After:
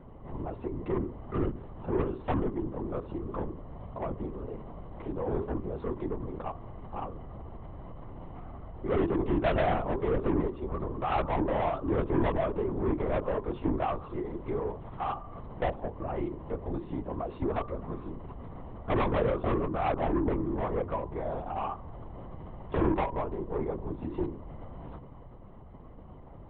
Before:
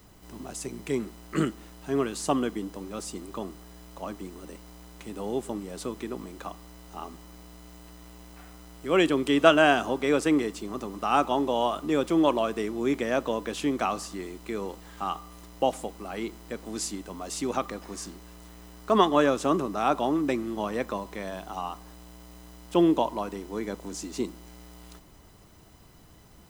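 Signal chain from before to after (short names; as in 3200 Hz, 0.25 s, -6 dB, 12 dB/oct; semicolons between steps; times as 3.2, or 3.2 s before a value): notches 50/100/150/200/250/300/350/400 Hz; in parallel at +2 dB: compressor, threshold -38 dBFS, peak gain reduction 24 dB; on the sum: polynomial smoothing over 65 samples; soft clip -23 dBFS, distortion -9 dB; LPC vocoder at 8 kHz whisper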